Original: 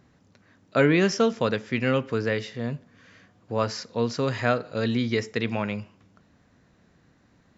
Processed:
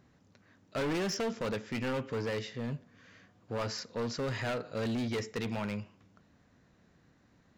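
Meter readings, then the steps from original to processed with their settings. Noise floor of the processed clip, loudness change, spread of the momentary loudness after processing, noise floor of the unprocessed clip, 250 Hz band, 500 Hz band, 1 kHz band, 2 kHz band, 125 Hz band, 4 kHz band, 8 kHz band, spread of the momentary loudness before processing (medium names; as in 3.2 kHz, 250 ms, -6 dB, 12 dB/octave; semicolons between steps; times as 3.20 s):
-66 dBFS, -9.5 dB, 7 LU, -62 dBFS, -9.5 dB, -10.0 dB, -9.5 dB, -10.5 dB, -9.0 dB, -6.5 dB, no reading, 12 LU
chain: overload inside the chain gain 25.5 dB; trim -4.5 dB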